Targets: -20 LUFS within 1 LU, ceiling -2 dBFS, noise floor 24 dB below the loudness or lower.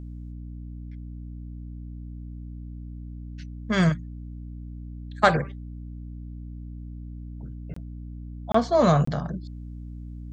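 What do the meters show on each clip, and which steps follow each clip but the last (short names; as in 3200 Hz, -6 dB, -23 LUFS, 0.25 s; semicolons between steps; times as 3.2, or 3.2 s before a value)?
dropouts 3; longest dropout 24 ms; hum 60 Hz; harmonics up to 300 Hz; hum level -35 dBFS; loudness -24.0 LUFS; peak -2.5 dBFS; loudness target -20.0 LUFS
-> interpolate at 7.74/8.52/9.05, 24 ms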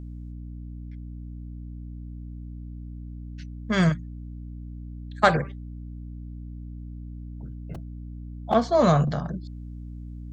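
dropouts 0; hum 60 Hz; harmonics up to 300 Hz; hum level -35 dBFS
-> de-hum 60 Hz, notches 5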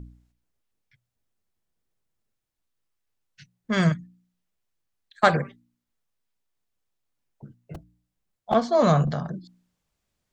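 hum none; loudness -23.5 LUFS; peak -2.5 dBFS; loudness target -20.0 LUFS
-> gain +3.5 dB; limiter -2 dBFS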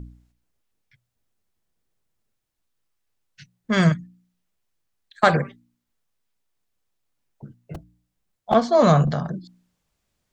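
loudness -20.0 LUFS; peak -2.0 dBFS; noise floor -78 dBFS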